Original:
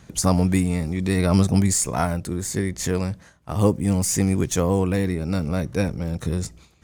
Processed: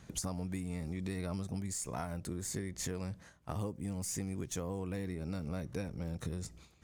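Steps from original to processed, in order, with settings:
downward compressor 10 to 1, threshold −28 dBFS, peak gain reduction 15.5 dB
level −7 dB

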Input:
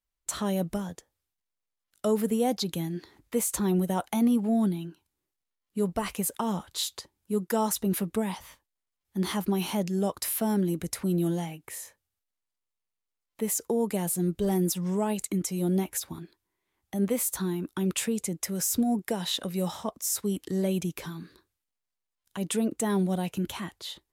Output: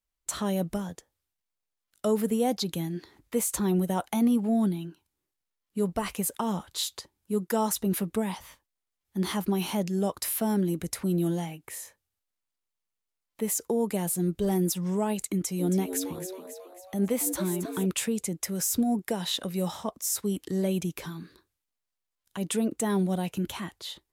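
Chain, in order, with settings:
0:15.32–0:17.86: echo with shifted repeats 272 ms, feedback 52%, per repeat +92 Hz, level −9 dB

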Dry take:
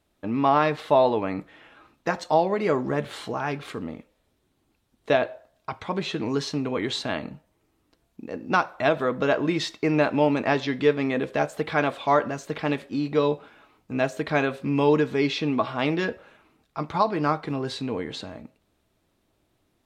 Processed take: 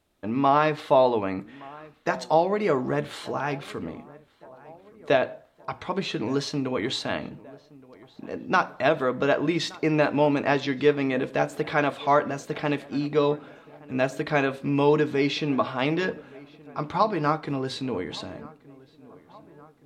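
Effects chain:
mains-hum notches 60/120/180/240/300 Hz
feedback echo with a low-pass in the loop 1,171 ms, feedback 60%, low-pass 2,100 Hz, level −22 dB

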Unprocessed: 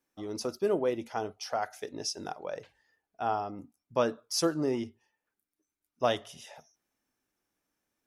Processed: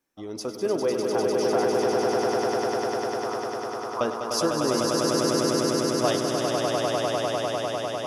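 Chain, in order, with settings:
0:01.93–0:04.01: flat-topped band-pass 1,100 Hz, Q 3.2
on a send: echo that builds up and dies away 100 ms, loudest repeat 8, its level −3.5 dB
on the sum: level +2 dB

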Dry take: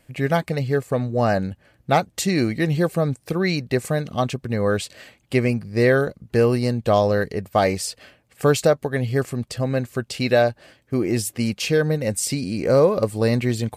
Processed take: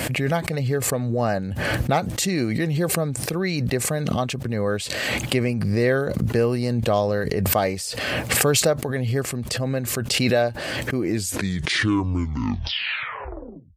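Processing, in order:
turntable brake at the end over 2.80 s
high-pass filter 58 Hz 24 dB per octave
background raised ahead of every attack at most 22 dB per second
level −3.5 dB

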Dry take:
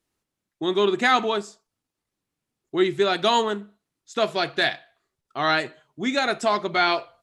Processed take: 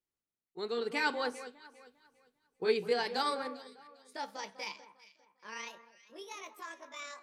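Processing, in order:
pitch glide at a constant tempo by +10.5 semitones starting unshifted
source passing by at 0:02.03, 26 m/s, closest 8 metres
delay that swaps between a low-pass and a high-pass 200 ms, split 1,700 Hz, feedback 52%, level −12 dB

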